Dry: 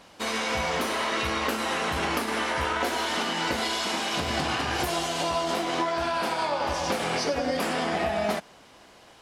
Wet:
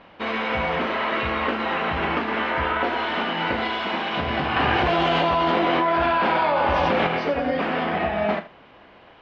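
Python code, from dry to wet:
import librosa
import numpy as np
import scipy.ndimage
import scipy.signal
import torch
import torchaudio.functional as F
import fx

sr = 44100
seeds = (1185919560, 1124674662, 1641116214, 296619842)

y = scipy.signal.sosfilt(scipy.signal.butter(4, 3000.0, 'lowpass', fs=sr, output='sos'), x)
y = fx.room_early_taps(y, sr, ms=(35, 77), db=(-11.5, -15.5))
y = fx.env_flatten(y, sr, amount_pct=100, at=(4.56, 7.07))
y = y * librosa.db_to_amplitude(3.5)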